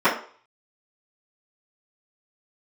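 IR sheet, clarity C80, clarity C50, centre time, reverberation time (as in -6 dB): 12.5 dB, 8.0 dB, 25 ms, 0.45 s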